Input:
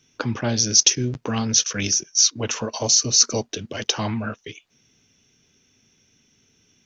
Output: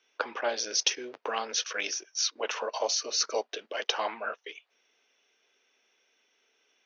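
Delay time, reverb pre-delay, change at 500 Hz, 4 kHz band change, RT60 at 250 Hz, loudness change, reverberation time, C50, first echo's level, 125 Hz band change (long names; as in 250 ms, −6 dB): no echo audible, no reverb audible, −3.5 dB, −9.0 dB, no reverb audible, −11.0 dB, no reverb audible, no reverb audible, no echo audible, below −40 dB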